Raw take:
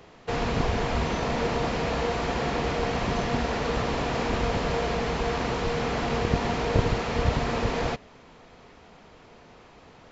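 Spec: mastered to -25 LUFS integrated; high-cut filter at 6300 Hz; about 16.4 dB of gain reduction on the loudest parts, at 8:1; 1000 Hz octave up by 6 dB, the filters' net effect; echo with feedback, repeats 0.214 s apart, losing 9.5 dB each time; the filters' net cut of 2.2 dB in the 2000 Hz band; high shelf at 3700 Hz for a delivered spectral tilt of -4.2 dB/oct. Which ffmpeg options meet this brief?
-af "lowpass=6.3k,equalizer=f=1k:t=o:g=9,equalizer=f=2k:t=o:g=-8,highshelf=f=3.7k:g=8,acompressor=threshold=-34dB:ratio=8,aecho=1:1:214|428|642|856:0.335|0.111|0.0365|0.012,volume=12dB"

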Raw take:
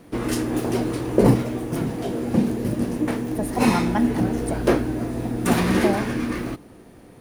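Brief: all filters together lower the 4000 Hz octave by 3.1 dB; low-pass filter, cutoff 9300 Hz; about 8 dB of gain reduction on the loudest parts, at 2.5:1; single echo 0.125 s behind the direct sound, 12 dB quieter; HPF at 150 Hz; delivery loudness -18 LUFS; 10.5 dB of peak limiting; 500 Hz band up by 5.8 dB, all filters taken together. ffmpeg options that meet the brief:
-af "highpass=150,lowpass=9.3k,equalizer=f=500:t=o:g=7.5,equalizer=f=4k:t=o:g=-4,acompressor=threshold=-22dB:ratio=2.5,alimiter=limit=-16.5dB:level=0:latency=1,aecho=1:1:125:0.251,volume=8dB"

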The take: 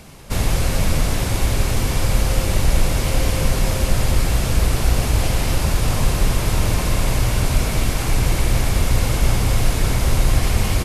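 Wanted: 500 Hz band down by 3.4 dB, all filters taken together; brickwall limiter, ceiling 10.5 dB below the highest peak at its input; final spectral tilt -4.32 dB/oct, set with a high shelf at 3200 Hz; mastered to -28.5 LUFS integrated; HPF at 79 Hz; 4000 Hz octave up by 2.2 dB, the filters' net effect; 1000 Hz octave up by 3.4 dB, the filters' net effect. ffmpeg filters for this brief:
-af "highpass=79,equalizer=f=500:t=o:g=-6,equalizer=f=1k:t=o:g=6.5,highshelf=f=3.2k:g=-8,equalizer=f=4k:t=o:g=8.5,volume=-1.5dB,alimiter=limit=-19.5dB:level=0:latency=1"

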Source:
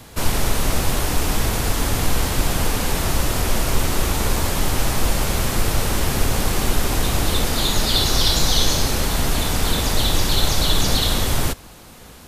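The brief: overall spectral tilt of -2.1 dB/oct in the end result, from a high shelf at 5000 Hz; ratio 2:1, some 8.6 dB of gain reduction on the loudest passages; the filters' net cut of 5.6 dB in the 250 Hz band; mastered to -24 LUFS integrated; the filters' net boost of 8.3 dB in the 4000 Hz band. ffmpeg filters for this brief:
-af "equalizer=f=250:t=o:g=-8,equalizer=f=4k:t=o:g=8,highshelf=f=5k:g=4,acompressor=threshold=-25dB:ratio=2,volume=-1dB"

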